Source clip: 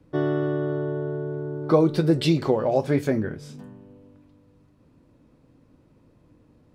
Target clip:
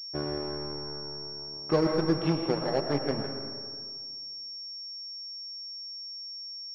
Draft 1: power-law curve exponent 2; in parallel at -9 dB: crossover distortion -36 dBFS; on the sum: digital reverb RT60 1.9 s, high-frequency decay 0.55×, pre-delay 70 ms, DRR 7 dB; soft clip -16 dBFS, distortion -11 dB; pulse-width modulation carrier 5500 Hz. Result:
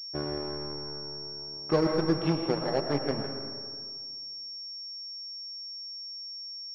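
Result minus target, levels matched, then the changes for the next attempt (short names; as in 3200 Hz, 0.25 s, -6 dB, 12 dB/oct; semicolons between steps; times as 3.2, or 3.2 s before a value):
crossover distortion: distortion +7 dB
change: crossover distortion -46 dBFS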